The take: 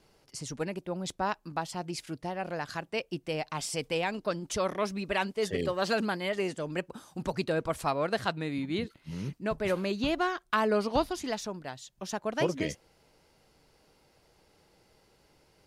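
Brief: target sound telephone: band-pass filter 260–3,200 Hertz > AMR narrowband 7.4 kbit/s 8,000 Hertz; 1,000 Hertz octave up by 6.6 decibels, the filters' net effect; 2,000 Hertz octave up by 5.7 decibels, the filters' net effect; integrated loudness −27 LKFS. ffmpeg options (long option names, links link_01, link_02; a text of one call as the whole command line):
ffmpeg -i in.wav -af "highpass=260,lowpass=3200,equalizer=frequency=1000:width_type=o:gain=7,equalizer=frequency=2000:width_type=o:gain=5.5,volume=3dB" -ar 8000 -c:a libopencore_amrnb -b:a 7400 out.amr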